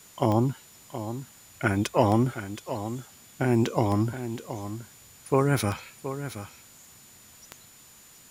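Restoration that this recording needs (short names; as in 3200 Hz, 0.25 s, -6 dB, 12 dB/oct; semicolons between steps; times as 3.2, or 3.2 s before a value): de-click; notch 7000 Hz, Q 30; noise print and reduce 19 dB; inverse comb 0.723 s -11 dB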